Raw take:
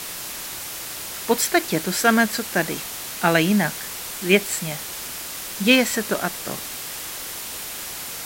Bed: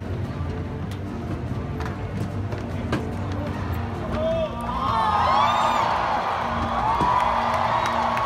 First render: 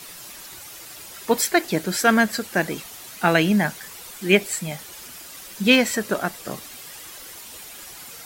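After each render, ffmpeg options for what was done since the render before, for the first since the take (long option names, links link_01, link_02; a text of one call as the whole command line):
ffmpeg -i in.wav -af "afftdn=noise_reduction=10:noise_floor=-33" out.wav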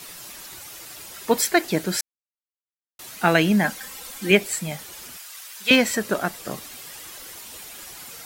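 ffmpeg -i in.wav -filter_complex "[0:a]asettb=1/sr,asplit=3[link_01][link_02][link_03];[link_01]atrim=end=3.644[link_04];[link_02]atrim=start=3.64:end=4.31,asetpts=PTS-STARTPTS,afade=type=in:duration=0.004:curve=qsin,afade=type=out:start_time=0.666:duration=0.004:curve=qsin,aecho=1:1:3.8:0.65,atrim=end_sample=29547[link_05];[link_03]atrim=start=4.306[link_06];[link_04][link_05]acrossfade=duration=0.004:curve1=hsin:curve2=qsin[link_07];[link_07][link_06]acrossfade=duration=0.004:curve1=qsin:curve2=hsin,asettb=1/sr,asplit=3[link_08][link_09][link_10];[link_08]atrim=end=5.174[link_11];[link_09]atrim=start=5.17:end=5.71,asetpts=PTS-STARTPTS,afade=type=in:duration=0.004:curve=qsin,afade=type=out:start_time=0.536:duration=0.004:curve=qsin,highpass=1000[link_12];[link_10]atrim=start=5.706[link_13];[link_11][link_12]acrossfade=duration=0.004:curve1=hsin:curve2=qsin[link_14];[link_14][link_13]acrossfade=duration=0.004:curve1=qsin:curve2=hsin,asplit=3[link_15][link_16][link_17];[link_15]atrim=end=2.01,asetpts=PTS-STARTPTS,afade=type=out:start_time=2.006:duration=0.004:curve=hsin[link_18];[link_16]atrim=start=2.01:end=2.99,asetpts=PTS-STARTPTS,volume=0[link_19];[link_17]atrim=start=2.99,asetpts=PTS-STARTPTS,afade=type=in:duration=0.004:curve=hsin[link_20];[link_18][link_19][link_20]concat=n=3:v=0:a=1" out.wav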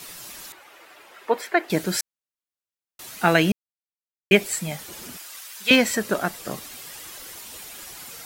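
ffmpeg -i in.wav -filter_complex "[0:a]asettb=1/sr,asplit=3[link_01][link_02][link_03];[link_01]atrim=end=0.524[link_04];[link_02]atrim=start=0.52:end=1.7,asetpts=PTS-STARTPTS,afade=type=in:duration=0.004:curve=qsin,afade=type=out:start_time=1.176:duration=0.004:curve=qsin,acrossover=split=320 2800:gain=0.0794 1 0.112[link_05][link_06][link_07];[link_05][link_06][link_07]amix=inputs=3:normalize=0[link_08];[link_03]atrim=start=1.696[link_09];[link_04][link_08]acrossfade=duration=0.004:curve1=hsin:curve2=qsin[link_10];[link_10][link_09]acrossfade=duration=0.004:curve1=qsin:curve2=hsin,asettb=1/sr,asplit=3[link_11][link_12][link_13];[link_11]atrim=end=4.884[link_14];[link_12]atrim=start=4.88:end=5.4,asetpts=PTS-STARTPTS,afade=type=in:duration=0.004:curve=qsin,afade=type=out:start_time=0.516:duration=0.004:curve=qsin,equalizer=frequency=230:width=0.56:gain=10[link_15];[link_13]atrim=start=5.396[link_16];[link_14][link_15]acrossfade=duration=0.004:curve1=hsin:curve2=qsin[link_17];[link_17][link_16]acrossfade=duration=0.004:curve1=qsin:curve2=hsin,asplit=3[link_18][link_19][link_20];[link_18]atrim=end=3.52,asetpts=PTS-STARTPTS,afade=type=out:start_time=3.516:duration=0.004:curve=hsin[link_21];[link_19]atrim=start=3.52:end=4.31,asetpts=PTS-STARTPTS,volume=0[link_22];[link_20]atrim=start=4.31,asetpts=PTS-STARTPTS,afade=type=in:duration=0.004:curve=hsin[link_23];[link_21][link_22][link_23]concat=n=3:v=0:a=1" out.wav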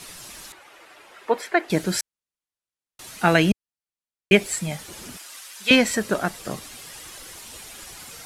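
ffmpeg -i in.wav -af "lowpass=frequency=12000:width=0.5412,lowpass=frequency=12000:width=1.3066,lowshelf=frequency=110:gain=7" out.wav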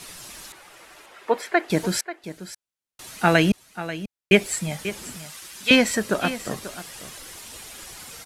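ffmpeg -i in.wav -af "aecho=1:1:538:0.211" out.wav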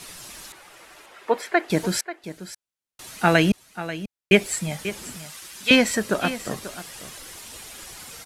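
ffmpeg -i in.wav -af anull out.wav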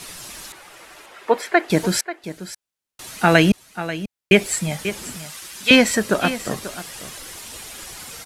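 ffmpeg -i in.wav -af "volume=4dB,alimiter=limit=-1dB:level=0:latency=1" out.wav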